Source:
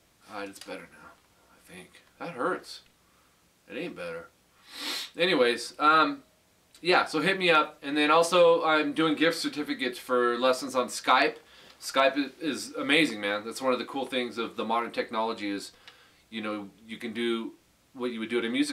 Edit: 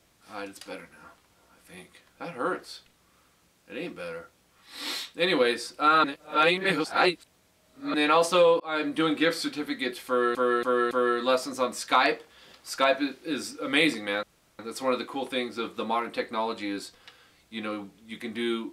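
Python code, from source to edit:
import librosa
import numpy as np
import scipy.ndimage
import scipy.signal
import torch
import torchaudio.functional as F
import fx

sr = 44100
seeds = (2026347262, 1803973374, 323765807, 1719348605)

y = fx.edit(x, sr, fx.reverse_span(start_s=6.04, length_s=1.9),
    fx.fade_in_span(start_s=8.6, length_s=0.27),
    fx.repeat(start_s=10.07, length_s=0.28, count=4),
    fx.insert_room_tone(at_s=13.39, length_s=0.36), tone=tone)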